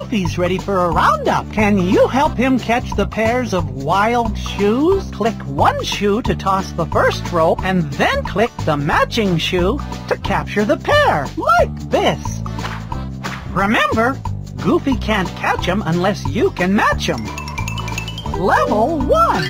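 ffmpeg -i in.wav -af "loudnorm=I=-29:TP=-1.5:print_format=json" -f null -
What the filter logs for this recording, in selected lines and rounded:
"input_i" : "-17.0",
"input_tp" : "-3.8",
"input_lra" : "2.0",
"input_thresh" : "-27.0",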